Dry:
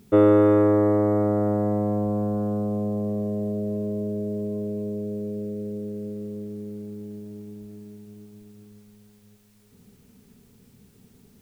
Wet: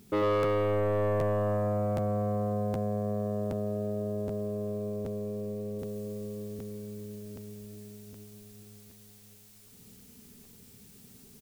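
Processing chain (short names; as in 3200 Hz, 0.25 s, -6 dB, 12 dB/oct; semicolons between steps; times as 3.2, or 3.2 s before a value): high shelf 2700 Hz +5.5 dB, from 5.79 s +11 dB; soft clip -21 dBFS, distortion -8 dB; echo 98 ms -4 dB; spring tank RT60 3.6 s, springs 59 ms, chirp 80 ms, DRR 14.5 dB; crackling interface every 0.77 s, samples 512, repeat, from 0.42; gain -3.5 dB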